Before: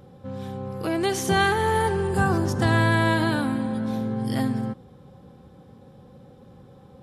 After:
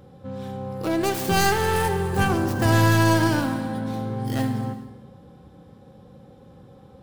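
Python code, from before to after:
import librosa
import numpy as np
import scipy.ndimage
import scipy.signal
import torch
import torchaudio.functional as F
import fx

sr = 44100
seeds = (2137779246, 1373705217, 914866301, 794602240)

y = fx.tracing_dist(x, sr, depth_ms=0.35)
y = fx.rev_gated(y, sr, seeds[0], gate_ms=460, shape='falling', drr_db=7.5)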